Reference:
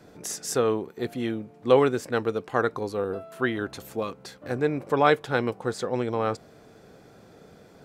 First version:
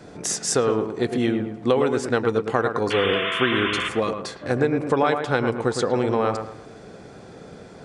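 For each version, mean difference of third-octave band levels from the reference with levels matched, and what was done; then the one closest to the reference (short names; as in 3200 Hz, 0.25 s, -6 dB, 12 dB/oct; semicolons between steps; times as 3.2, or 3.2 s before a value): 5.5 dB: compressor 6:1, threshold -25 dBFS, peak gain reduction 12 dB; painted sound noise, 2.9–3.89, 980–3600 Hz -35 dBFS; on a send: dark delay 0.11 s, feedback 33%, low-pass 2200 Hz, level -6.5 dB; on the sum: downsampling 22050 Hz; gain +8 dB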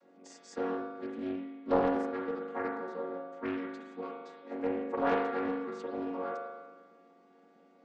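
8.0 dB: chord vocoder major triad, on F#3; HPF 330 Hz 12 dB/oct; spring tank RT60 1.4 s, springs 40 ms, chirp 80 ms, DRR -1.5 dB; Doppler distortion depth 0.42 ms; gain -7.5 dB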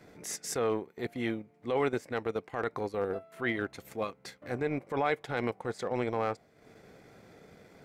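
3.0 dB: dynamic EQ 730 Hz, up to +5 dB, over -39 dBFS, Q 1.9; limiter -15 dBFS, peak gain reduction 11.5 dB; bell 2100 Hz +10 dB 0.34 oct; transient shaper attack -6 dB, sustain -10 dB; gain -3 dB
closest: third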